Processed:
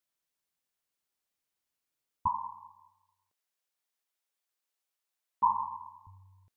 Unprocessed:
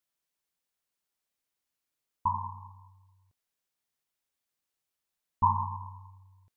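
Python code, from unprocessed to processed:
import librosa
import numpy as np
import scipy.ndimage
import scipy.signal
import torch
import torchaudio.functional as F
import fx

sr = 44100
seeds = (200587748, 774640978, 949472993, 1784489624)

y = fx.highpass(x, sr, hz=410.0, slope=12, at=(2.27, 6.07))
y = y * 10.0 ** (-1.0 / 20.0)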